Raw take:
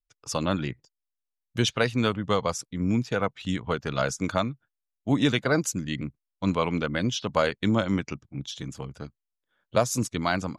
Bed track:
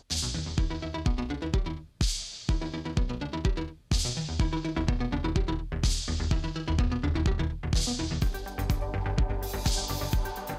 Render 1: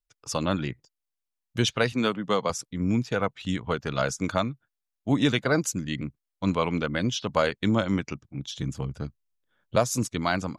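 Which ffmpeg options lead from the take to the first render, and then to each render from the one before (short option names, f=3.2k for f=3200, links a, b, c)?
-filter_complex "[0:a]asettb=1/sr,asplit=3[a][b][c];[a]atrim=end=1.924[d];[b]atrim=start=1.92:end=2.5,asetpts=PTS-STARTPTS,afade=t=in:d=0.004:c=qsin,afade=t=out:st=0.576:d=0.004:c=qsin,highpass=f=150:w=0.5412,highpass=f=150:w=1.3066[e];[c]atrim=start=2.496[f];[d][e]acrossfade=d=0.004:c1=hsin:c2=qsin[g];[g][f]acrossfade=d=0.004:c1=qsin:c2=hsin,asettb=1/sr,asplit=3[h][i][j];[h]atrim=end=8.544[k];[i]atrim=start=8.54:end=9.76,asetpts=PTS-STARTPTS,afade=t=in:d=0.004:c=qsin,afade=t=out:st=1.216:d=0.004:c=qsin,lowshelf=f=230:g=9[l];[j]atrim=start=9.756[m];[k][l]acrossfade=d=0.004:c1=hsin:c2=qsin[n];[n][m]acrossfade=d=0.004:c1=qsin:c2=hsin"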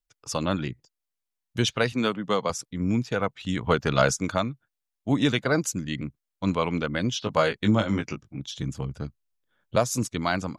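-filter_complex "[0:a]asettb=1/sr,asplit=3[a][b][c];[a]atrim=end=0.684[d];[b]atrim=start=0.68:end=1.58,asetpts=PTS-STARTPTS,afade=t=in:d=0.004:c=qsin,afade=t=out:st=0.896:d=0.004:c=qsin,acrossover=split=390|3000[e][f][g];[f]acompressor=threshold=-55dB:ratio=6:attack=3.2:release=140:knee=2.83:detection=peak[h];[e][h][g]amix=inputs=3:normalize=0[i];[c]atrim=start=1.576[j];[d][i]acrossfade=d=0.004:c1=hsin:c2=qsin[k];[k][j]acrossfade=d=0.004:c1=qsin:c2=hsin,asplit=3[l][m][n];[l]afade=t=out:st=3.56:d=0.02[o];[m]acontrast=46,afade=t=in:st=3.56:d=0.02,afade=t=out:st=4.16:d=0.02[p];[n]afade=t=in:st=4.16:d=0.02[q];[o][p][q]amix=inputs=3:normalize=0,asettb=1/sr,asplit=3[r][s][t];[r]atrim=end=7.204[u];[s]atrim=start=7.2:end=8.4,asetpts=PTS-STARTPTS,afade=t=in:d=0.004:c=qsin,afade=t=out:st=1.196:d=0.004:c=qsin,asplit=2[v][w];[w]adelay=19,volume=-5dB[x];[v][x]amix=inputs=2:normalize=0,atrim=end_sample=52920[y];[t]atrim=start=8.396[z];[u][y]acrossfade=d=0.004:c1=hsin:c2=qsin[aa];[aa][z]acrossfade=d=0.004:c1=qsin:c2=hsin"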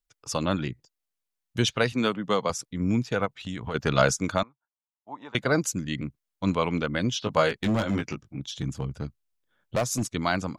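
-filter_complex "[0:a]asplit=3[a][b][c];[a]afade=t=out:st=3.25:d=0.02[d];[b]acompressor=threshold=-29dB:ratio=6:attack=3.2:release=140:knee=1:detection=peak,afade=t=in:st=3.25:d=0.02,afade=t=out:st=3.74:d=0.02[e];[c]afade=t=in:st=3.74:d=0.02[f];[d][e][f]amix=inputs=3:normalize=0,asettb=1/sr,asplit=3[g][h][i];[g]atrim=end=4.434[j];[h]atrim=start=4.43:end=5.35,asetpts=PTS-STARTPTS,afade=t=in:d=0.004:c=qsin,afade=t=out:st=0.916:d=0.004:c=qsin,bandpass=f=930:t=q:w=5[k];[i]atrim=start=5.346[l];[j][k]acrossfade=d=0.004:c1=hsin:c2=qsin[m];[m][l]acrossfade=d=0.004:c1=qsin:c2=hsin,asettb=1/sr,asplit=3[n][o][p];[n]atrim=end=7.494[q];[o]atrim=start=7.49:end=10.12,asetpts=PTS-STARTPTS,afade=t=in:d=0.004:c=qsin,afade=t=out:st=2.626:d=0.004:c=qsin,asoftclip=type=hard:threshold=-20.5dB[r];[p]atrim=start=10.116[s];[q][r]acrossfade=d=0.004:c1=hsin:c2=qsin[t];[t][s]acrossfade=d=0.004:c1=qsin:c2=hsin"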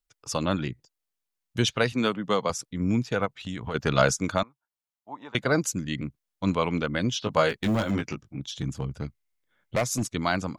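-filter_complex "[0:a]asettb=1/sr,asplit=3[a][b][c];[a]atrim=end=7.494[d];[b]atrim=start=7.49:end=7.91,asetpts=PTS-STARTPTS,afade=t=in:d=0.004:c=qsin,afade=t=out:st=0.416:d=0.004:c=qsin,acrusher=bits=8:mode=log:mix=0:aa=0.000001[e];[c]atrim=start=7.906[f];[d][e]acrossfade=d=0.004:c1=hsin:c2=qsin[g];[g][f]acrossfade=d=0.004:c1=qsin:c2=hsin,asettb=1/sr,asplit=3[h][i][j];[h]atrim=end=9.024[k];[i]atrim=start=9.02:end=9.88,asetpts=PTS-STARTPTS,afade=t=in:d=0.004:c=qsin,afade=t=out:st=0.856:d=0.004:c=qsin,equalizer=f=2.1k:w=7.9:g=12.5[l];[j]atrim=start=9.876[m];[k][l]acrossfade=d=0.004:c1=hsin:c2=qsin[n];[n][m]acrossfade=d=0.004:c1=qsin:c2=hsin"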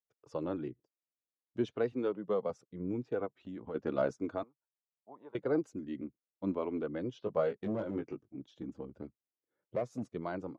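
-af "flanger=delay=1.4:depth=2.4:regen=-52:speed=0.4:shape=triangular,bandpass=f=380:t=q:w=1.4:csg=0"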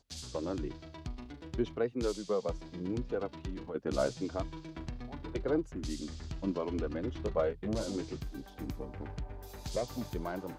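-filter_complex "[1:a]volume=-14.5dB[a];[0:a][a]amix=inputs=2:normalize=0"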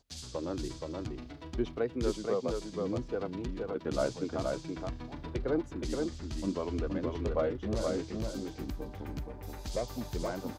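-af "aecho=1:1:473:0.668"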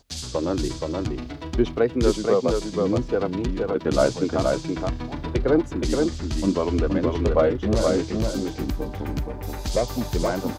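-af "volume=11.5dB"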